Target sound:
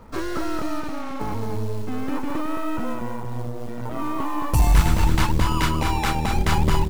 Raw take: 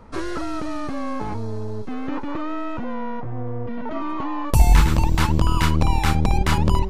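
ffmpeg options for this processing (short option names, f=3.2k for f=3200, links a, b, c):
-filter_complex "[0:a]asettb=1/sr,asplit=3[a][b][c];[a]atrim=end=5.454[d];[b]atrim=start=5.45:end=6.36,asetpts=PTS-STARTPTS,afade=t=in:d=0.004:c=qsin,afade=t=out:st=0.906:d=0.004:c=qsin,lowshelf=f=150:g=-8.5[e];[c]atrim=start=6.356[f];[d][e]acrossfade=d=0.004:c1=hsin:c2=qsin[g];[g][f]acrossfade=d=0.004:c1=qsin:c2=hsin,asoftclip=type=tanh:threshold=-9.5dB,acrusher=bits=6:mode=log:mix=0:aa=0.000001,asplit=3[h][i][j];[h]afade=t=out:st=0.79:d=0.02[k];[i]volume=29dB,asoftclip=hard,volume=-29dB,afade=t=in:st=0.79:d=0.02,afade=t=out:st=1.19:d=0.02[l];[j]afade=t=in:st=1.19:d=0.02[m];[k][l][m]amix=inputs=3:normalize=0,asplit=3[n][o][p];[n]afade=t=out:st=2.93:d=0.02[q];[o]tremolo=f=120:d=0.824,afade=t=in:st=2.93:d=0.02,afade=t=out:st=3.97:d=0.02[r];[p]afade=t=in:st=3.97:d=0.02[s];[q][r][s]amix=inputs=3:normalize=0,aecho=1:1:219:0.531"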